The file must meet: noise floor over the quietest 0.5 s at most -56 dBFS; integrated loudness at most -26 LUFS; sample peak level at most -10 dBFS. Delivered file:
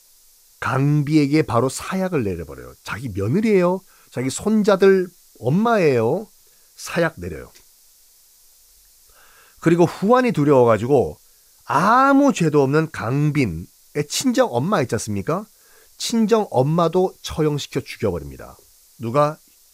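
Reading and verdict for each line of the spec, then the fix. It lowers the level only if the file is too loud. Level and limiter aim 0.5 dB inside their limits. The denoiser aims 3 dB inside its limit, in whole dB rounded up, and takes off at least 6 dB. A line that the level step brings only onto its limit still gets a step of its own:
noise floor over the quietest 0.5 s -53 dBFS: fail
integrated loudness -19.0 LUFS: fail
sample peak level -3.5 dBFS: fail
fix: gain -7.5 dB

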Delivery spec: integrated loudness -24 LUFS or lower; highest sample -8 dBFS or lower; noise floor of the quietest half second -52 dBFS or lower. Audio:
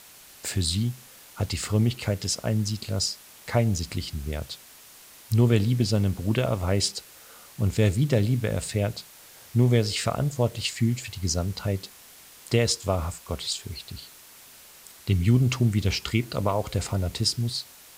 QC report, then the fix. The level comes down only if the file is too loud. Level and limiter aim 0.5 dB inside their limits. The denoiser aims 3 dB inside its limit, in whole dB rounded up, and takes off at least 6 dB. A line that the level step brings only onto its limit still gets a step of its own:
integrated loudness -26.0 LUFS: OK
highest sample -7.0 dBFS: fail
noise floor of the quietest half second -50 dBFS: fail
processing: denoiser 6 dB, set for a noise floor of -50 dBFS; limiter -8.5 dBFS

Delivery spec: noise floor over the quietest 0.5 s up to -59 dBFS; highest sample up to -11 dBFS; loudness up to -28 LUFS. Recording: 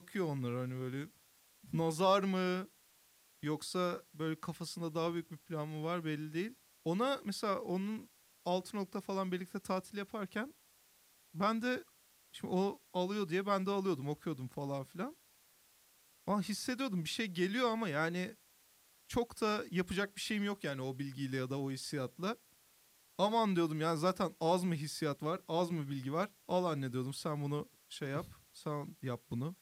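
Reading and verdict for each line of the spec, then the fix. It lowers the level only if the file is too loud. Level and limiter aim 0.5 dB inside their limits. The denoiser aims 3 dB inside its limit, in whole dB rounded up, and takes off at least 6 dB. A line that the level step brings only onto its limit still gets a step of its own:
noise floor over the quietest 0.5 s -68 dBFS: OK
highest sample -18.5 dBFS: OK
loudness -37.5 LUFS: OK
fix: none

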